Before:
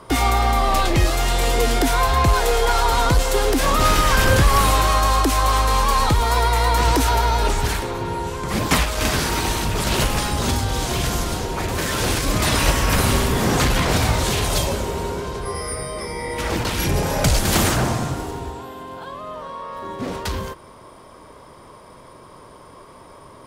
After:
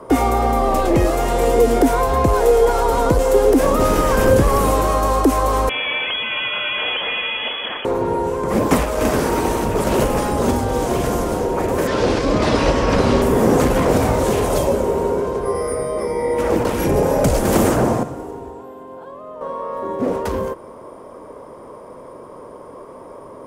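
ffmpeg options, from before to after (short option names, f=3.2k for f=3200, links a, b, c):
-filter_complex "[0:a]asettb=1/sr,asplit=3[a][b][c];[a]atrim=end=5.694[d];[b]atrim=start=5.69:end=7.85,asetpts=PTS-STARTPTS,afade=t=in:d=0.004:c=qsin,afade=t=out:st=2.156:d=0.004:c=qsin,lowpass=f=2.9k:t=q:w=0.5098,lowpass=f=2.9k:t=q:w=0.6013,lowpass=f=2.9k:t=q:w=0.9,lowpass=f=2.9k:t=q:w=2.563,afreqshift=-3400[e];[c]atrim=start=7.846[f];[d][e]acrossfade=d=0.004:c1=hsin:c2=qsin[g];[g][f]acrossfade=d=0.004:c1=qsin:c2=hsin,asettb=1/sr,asplit=3[h][i][j];[h]atrim=end=11.874[k];[i]atrim=start=11.87:end=13.22,asetpts=PTS-STARTPTS,afade=t=in:d=0.004:c=qsin,afade=t=out:st=1.346:d=0.004:c=qsin,lowpass=f=4.5k:t=q:w=1.9[l];[j]atrim=start=13.216[m];[k][l]acrossfade=d=0.004:c1=hsin:c2=qsin[n];[n][m]acrossfade=d=0.004:c1=qsin:c2=hsin,asplit=3[o][p][q];[o]atrim=end=18.032[r];[p]atrim=start=18.028:end=19.412,asetpts=PTS-STARTPTS,volume=-8dB[s];[q]atrim=start=19.408[t];[r][s]acrossfade=d=0.004:c1=hsin:c2=hsin[u];[u][t]acrossfade=d=0.004:c1=hsin:c2=hsin,equalizer=f=250:t=o:w=1:g=7,equalizer=f=500:t=o:w=1:g=12,equalizer=f=1k:t=o:w=1:g=4,equalizer=f=4k:t=o:w=1:g=-8,acrossover=split=460|3000[v][w][x];[w]acompressor=threshold=-15dB:ratio=6[y];[v][y][x]amix=inputs=3:normalize=0,volume=-2.5dB"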